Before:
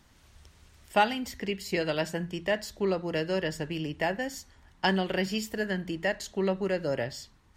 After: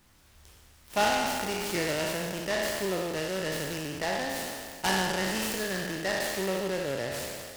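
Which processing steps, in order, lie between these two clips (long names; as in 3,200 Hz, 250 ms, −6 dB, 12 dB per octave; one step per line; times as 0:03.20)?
peak hold with a decay on every bin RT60 2.07 s
high-shelf EQ 5,900 Hz +11.5 dB
short delay modulated by noise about 2,500 Hz, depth 0.051 ms
level −5.5 dB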